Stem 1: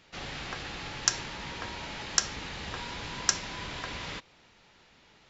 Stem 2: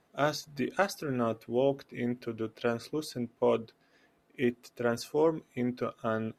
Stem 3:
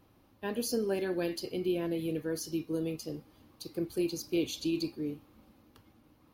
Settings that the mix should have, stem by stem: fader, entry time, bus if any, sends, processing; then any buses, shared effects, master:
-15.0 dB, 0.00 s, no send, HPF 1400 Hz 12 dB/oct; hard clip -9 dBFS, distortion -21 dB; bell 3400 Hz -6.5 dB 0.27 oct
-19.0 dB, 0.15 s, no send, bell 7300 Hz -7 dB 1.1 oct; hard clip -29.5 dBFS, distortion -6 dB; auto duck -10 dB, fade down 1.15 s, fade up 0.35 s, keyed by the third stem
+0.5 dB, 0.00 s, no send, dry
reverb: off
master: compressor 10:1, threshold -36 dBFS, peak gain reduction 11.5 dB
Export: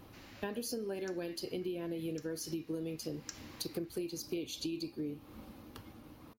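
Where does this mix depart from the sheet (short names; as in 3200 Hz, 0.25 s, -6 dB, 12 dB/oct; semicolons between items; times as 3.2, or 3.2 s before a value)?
stem 2 -19.0 dB -> -29.0 dB; stem 3 +0.5 dB -> +9.0 dB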